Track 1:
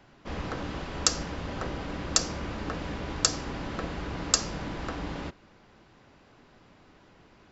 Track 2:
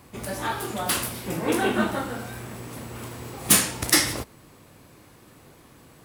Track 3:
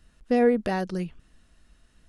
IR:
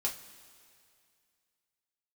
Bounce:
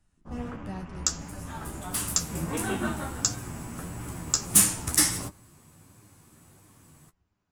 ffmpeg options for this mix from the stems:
-filter_complex "[0:a]afwtdn=0.00794,volume=-3.5dB,asplit=2[a][b];[b]volume=-10dB[c];[1:a]adelay=1050,volume=-1dB[d];[2:a]volume=19.5dB,asoftclip=hard,volume=-19.5dB,volume=-9dB,asplit=2[e][f];[f]apad=whole_len=312961[g];[d][g]sidechaincompress=threshold=-48dB:ratio=8:attack=16:release=1270[h];[3:a]atrim=start_sample=2205[i];[c][i]afir=irnorm=-1:irlink=0[j];[a][h][e][j]amix=inputs=4:normalize=0,equalizer=f=125:t=o:w=1:g=5,equalizer=f=500:t=o:w=1:g=-7,equalizer=f=2k:t=o:w=1:g=-3,equalizer=f=4k:t=o:w=1:g=-5,equalizer=f=8k:t=o:w=1:g=8,flanger=delay=9.6:depth=3.7:regen=30:speed=1.5:shape=triangular"

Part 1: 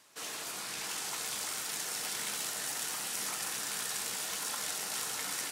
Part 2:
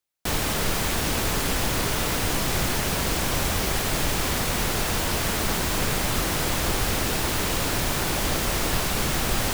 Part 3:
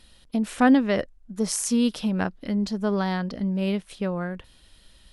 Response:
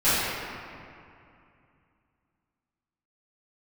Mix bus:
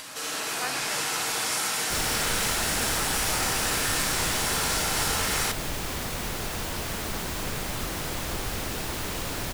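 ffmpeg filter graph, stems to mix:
-filter_complex "[0:a]volume=-3.5dB,asplit=2[a][b];[b]volume=-3.5dB[c];[1:a]adelay=1650,volume=-7dB[d];[2:a]highpass=1k,volume=-8.5dB[e];[3:a]atrim=start_sample=2205[f];[c][f]afir=irnorm=-1:irlink=0[g];[a][d][e][g]amix=inputs=4:normalize=0,acompressor=mode=upward:threshold=-29dB:ratio=2.5"

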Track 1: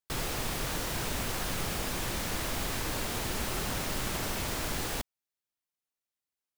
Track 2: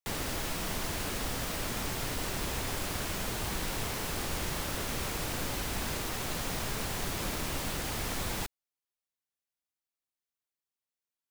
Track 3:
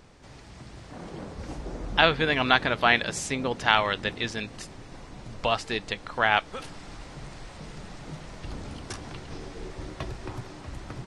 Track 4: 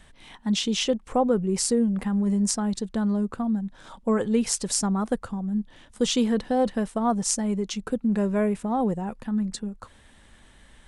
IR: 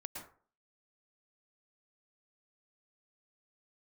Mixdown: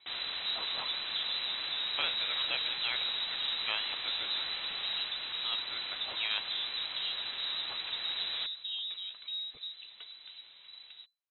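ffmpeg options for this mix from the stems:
-filter_complex "[0:a]volume=-8dB[a];[1:a]volume=-4dB[b];[2:a]adynamicequalizer=threshold=0.0112:dfrequency=2100:dqfactor=1.9:tfrequency=2100:tqfactor=1.9:attack=5:release=100:ratio=0.375:range=2:mode=cutabove:tftype=bell,volume=-14dB[c];[3:a]acompressor=threshold=-25dB:ratio=6,volume=-10.5dB[d];[a][b][c][d]amix=inputs=4:normalize=0,lowpass=f=3.4k:t=q:w=0.5098,lowpass=f=3.4k:t=q:w=0.6013,lowpass=f=3.4k:t=q:w=0.9,lowpass=f=3.4k:t=q:w=2.563,afreqshift=-4000"

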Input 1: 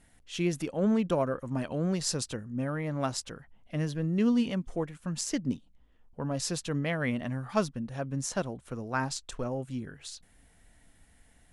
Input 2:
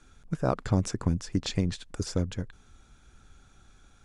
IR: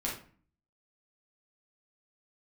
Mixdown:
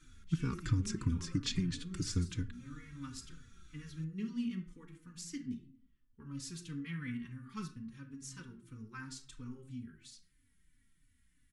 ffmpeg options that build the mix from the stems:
-filter_complex "[0:a]bandreject=f=67.64:t=h:w=4,bandreject=f=135.28:t=h:w=4,bandreject=f=202.92:t=h:w=4,bandreject=f=270.56:t=h:w=4,bandreject=f=338.2:t=h:w=4,bandreject=f=405.84:t=h:w=4,bandreject=f=473.48:t=h:w=4,bandreject=f=541.12:t=h:w=4,bandreject=f=608.76:t=h:w=4,bandreject=f=676.4:t=h:w=4,bandreject=f=744.04:t=h:w=4,bandreject=f=811.68:t=h:w=4,bandreject=f=879.32:t=h:w=4,bandreject=f=946.96:t=h:w=4,bandreject=f=1.0146k:t=h:w=4,bandreject=f=1.08224k:t=h:w=4,bandreject=f=1.14988k:t=h:w=4,bandreject=f=1.21752k:t=h:w=4,bandreject=f=1.28516k:t=h:w=4,bandreject=f=1.3528k:t=h:w=4,bandreject=f=1.42044k:t=h:w=4,bandreject=f=1.48808k:t=h:w=4,bandreject=f=1.55572k:t=h:w=4,bandreject=f=1.62336k:t=h:w=4,bandreject=f=1.691k:t=h:w=4,bandreject=f=1.75864k:t=h:w=4,bandreject=f=1.82628k:t=h:w=4,bandreject=f=1.89392k:t=h:w=4,bandreject=f=1.96156k:t=h:w=4,bandreject=f=2.0292k:t=h:w=4,bandreject=f=2.09684k:t=h:w=4,bandreject=f=2.16448k:t=h:w=4,bandreject=f=2.23212k:t=h:w=4,volume=-12dB,asplit=2[a][b];[b]volume=-7dB[c];[1:a]acompressor=threshold=-27dB:ratio=3,volume=0dB,asplit=3[d][e][f];[e]volume=-16.5dB[g];[f]apad=whole_len=508311[h];[a][h]sidechaincompress=threshold=-40dB:ratio=8:attack=16:release=775[i];[2:a]atrim=start_sample=2205[j];[c][g]amix=inputs=2:normalize=0[k];[k][j]afir=irnorm=-1:irlink=0[l];[i][d][l]amix=inputs=3:normalize=0,asuperstop=centerf=660:order=4:qfactor=0.7,asplit=2[m][n];[n]adelay=3.4,afreqshift=-3[o];[m][o]amix=inputs=2:normalize=1"

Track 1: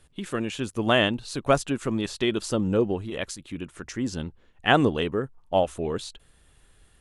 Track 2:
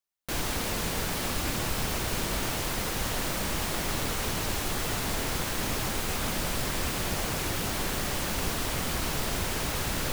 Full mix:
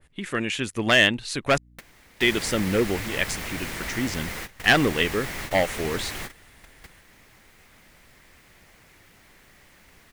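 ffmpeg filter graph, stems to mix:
-filter_complex "[0:a]volume=15.5dB,asoftclip=hard,volume=-15.5dB,adynamicequalizer=threshold=0.01:dfrequency=1800:dqfactor=0.7:tfrequency=1800:tqfactor=0.7:attack=5:release=100:ratio=0.375:range=2.5:mode=boostabove:tftype=highshelf,volume=0dB,asplit=3[a][b][c];[a]atrim=end=1.58,asetpts=PTS-STARTPTS,afade=t=out:st=1.576:d=0.004:c=hsin[d];[b]atrim=start=1.58:end=2.17,asetpts=PTS-STARTPTS,volume=0[e];[c]atrim=start=2.17,asetpts=PTS-STARTPTS,afade=t=in:d=0.004:c=hsin[f];[d][e][f]concat=n=3:v=0:a=1,asplit=2[g][h];[1:a]aeval=exprs='val(0)+0.00398*(sin(2*PI*60*n/s)+sin(2*PI*2*60*n/s)/2+sin(2*PI*3*60*n/s)/3+sin(2*PI*4*60*n/s)/4+sin(2*PI*5*60*n/s)/5)':c=same,adelay=1500,volume=-5dB[i];[h]apad=whole_len=512764[j];[i][j]sidechaingate=range=-21dB:threshold=-51dB:ratio=16:detection=peak[k];[g][k]amix=inputs=2:normalize=0,equalizer=f=2k:t=o:w=0.65:g=10"

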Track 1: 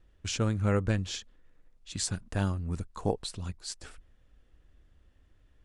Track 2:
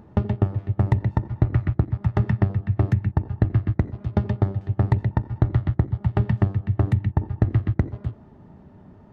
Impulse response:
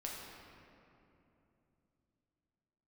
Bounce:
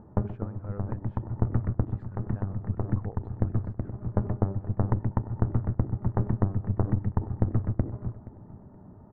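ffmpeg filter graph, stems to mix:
-filter_complex "[0:a]alimiter=limit=-20.5dB:level=0:latency=1:release=441,lowpass=f=7.9k:t=q:w=6,volume=-9dB,asplit=2[a][b];[1:a]aeval=exprs='clip(val(0),-1,0.0376)':c=same,volume=-2.5dB,asplit=2[c][d];[d]volume=-18dB[e];[b]apad=whole_len=402428[f];[c][f]sidechaincompress=threshold=-43dB:ratio=5:attack=24:release=355[g];[e]aecho=0:1:474|948|1422|1896:1|0.29|0.0841|0.0244[h];[a][g][h]amix=inputs=3:normalize=0,lowpass=f=1.4k:w=0.5412,lowpass=f=1.4k:w=1.3066"

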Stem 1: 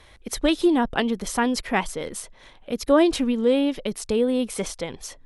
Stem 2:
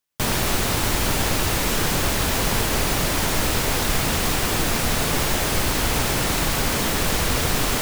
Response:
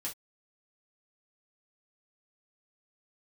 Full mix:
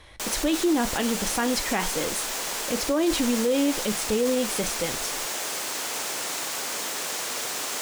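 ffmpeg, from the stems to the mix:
-filter_complex "[0:a]volume=-0.5dB,asplit=2[a][b];[b]volume=-7.5dB[c];[1:a]highpass=430,equalizer=f=7k:w=1.1:g=6.5,volume=-8.5dB[d];[2:a]atrim=start_sample=2205[e];[c][e]afir=irnorm=-1:irlink=0[f];[a][d][f]amix=inputs=3:normalize=0,alimiter=limit=-15dB:level=0:latency=1:release=30"

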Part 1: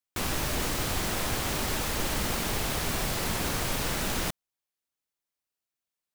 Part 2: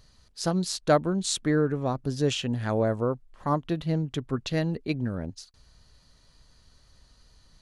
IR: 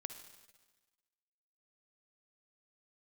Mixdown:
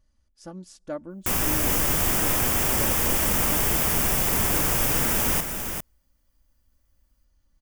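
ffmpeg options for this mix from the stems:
-filter_complex "[0:a]highshelf=f=9.9k:g=11.5,adelay=1100,volume=3dB,asplit=3[a][b][c];[b]volume=-23dB[d];[c]volume=-6.5dB[e];[1:a]lowshelf=f=350:g=6.5,aecho=1:1:3.5:0.68,volume=-17dB,asplit=2[f][g];[g]volume=-23.5dB[h];[2:a]atrim=start_sample=2205[i];[d][h]amix=inputs=2:normalize=0[j];[j][i]afir=irnorm=-1:irlink=0[k];[e]aecho=0:1:400:1[l];[a][f][k][l]amix=inputs=4:normalize=0,equalizer=f=4.1k:t=o:w=0.32:g=-13"

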